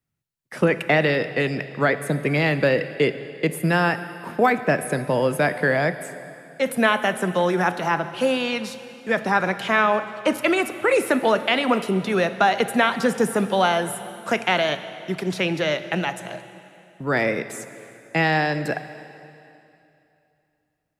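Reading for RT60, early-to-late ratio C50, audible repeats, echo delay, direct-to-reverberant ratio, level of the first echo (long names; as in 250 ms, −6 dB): 2.8 s, 12.0 dB, no echo audible, no echo audible, 11.0 dB, no echo audible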